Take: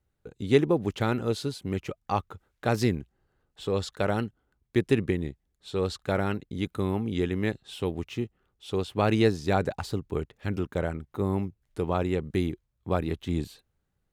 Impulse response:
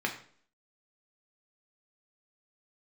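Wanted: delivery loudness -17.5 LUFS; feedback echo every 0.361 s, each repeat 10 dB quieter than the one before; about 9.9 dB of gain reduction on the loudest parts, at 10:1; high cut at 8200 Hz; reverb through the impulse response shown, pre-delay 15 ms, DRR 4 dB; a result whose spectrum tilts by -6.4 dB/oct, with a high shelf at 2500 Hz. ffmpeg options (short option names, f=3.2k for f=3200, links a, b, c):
-filter_complex "[0:a]lowpass=8.2k,highshelf=f=2.5k:g=-3.5,acompressor=threshold=-26dB:ratio=10,aecho=1:1:361|722|1083|1444:0.316|0.101|0.0324|0.0104,asplit=2[a][b];[1:a]atrim=start_sample=2205,adelay=15[c];[b][c]afir=irnorm=-1:irlink=0,volume=-11.5dB[d];[a][d]amix=inputs=2:normalize=0,volume=15dB"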